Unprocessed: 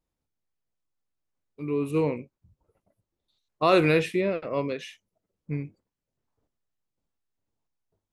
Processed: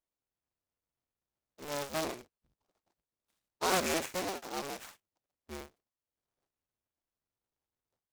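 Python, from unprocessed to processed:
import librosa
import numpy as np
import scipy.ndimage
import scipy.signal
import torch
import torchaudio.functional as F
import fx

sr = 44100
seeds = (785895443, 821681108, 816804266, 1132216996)

y = fx.cycle_switch(x, sr, every=2, mode='inverted')
y = fx.low_shelf(y, sr, hz=320.0, db=-12.0)
y = fx.noise_mod_delay(y, sr, seeds[0], noise_hz=4000.0, depth_ms=0.069)
y = y * 10.0 ** (-7.0 / 20.0)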